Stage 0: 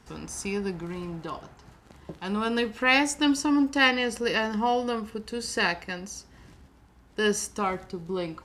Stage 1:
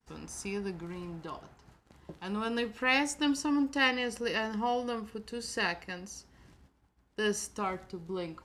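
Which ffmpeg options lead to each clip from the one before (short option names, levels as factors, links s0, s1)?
-af "agate=range=0.0224:threshold=0.00355:ratio=3:detection=peak,volume=0.501"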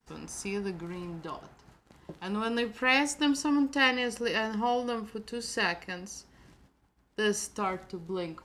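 -af "equalizer=f=77:w=1.7:g=-5.5,volume=1.33"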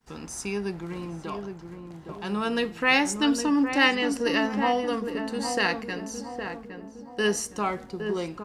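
-filter_complex "[0:a]asplit=2[s0][s1];[s1]adelay=813,lowpass=f=1100:p=1,volume=0.501,asplit=2[s2][s3];[s3]adelay=813,lowpass=f=1100:p=1,volume=0.51,asplit=2[s4][s5];[s5]adelay=813,lowpass=f=1100:p=1,volume=0.51,asplit=2[s6][s7];[s7]adelay=813,lowpass=f=1100:p=1,volume=0.51,asplit=2[s8][s9];[s9]adelay=813,lowpass=f=1100:p=1,volume=0.51,asplit=2[s10][s11];[s11]adelay=813,lowpass=f=1100:p=1,volume=0.51[s12];[s0][s2][s4][s6][s8][s10][s12]amix=inputs=7:normalize=0,volume=1.5"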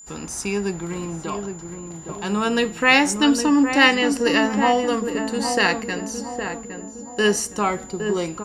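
-af "aeval=exprs='val(0)+0.00447*sin(2*PI*7100*n/s)':c=same,volume=2"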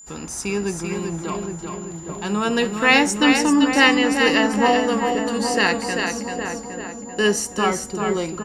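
-af "aecho=1:1:389:0.531"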